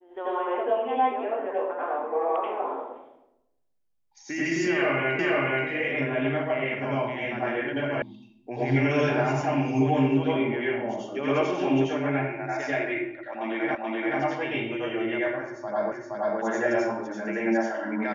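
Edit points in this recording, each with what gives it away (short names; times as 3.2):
5.19 repeat of the last 0.48 s
8.02 sound cut off
13.75 repeat of the last 0.43 s
15.92 repeat of the last 0.47 s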